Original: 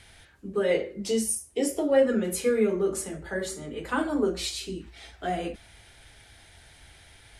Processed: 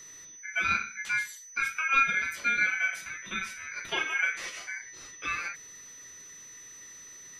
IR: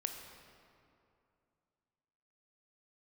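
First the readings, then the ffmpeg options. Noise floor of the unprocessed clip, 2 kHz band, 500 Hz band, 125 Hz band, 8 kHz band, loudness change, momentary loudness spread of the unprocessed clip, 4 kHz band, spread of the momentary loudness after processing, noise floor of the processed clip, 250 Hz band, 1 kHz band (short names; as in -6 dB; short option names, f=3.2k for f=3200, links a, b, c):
-54 dBFS, +11.0 dB, -24.5 dB, under -10 dB, -4.0 dB, -1.5 dB, 14 LU, -2.0 dB, 20 LU, -49 dBFS, -21.5 dB, +2.5 dB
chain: -filter_complex "[0:a]aeval=exprs='val(0)*sin(2*PI*1900*n/s)':c=same,acrossover=split=740|4100[a][b][c];[b]tiltshelf=f=1.4k:g=-3[d];[c]acompressor=threshold=-51dB:ratio=6[e];[a][d][e]amix=inputs=3:normalize=0,aeval=exprs='val(0)+0.00562*sin(2*PI*6000*n/s)':c=same,volume=-1dB"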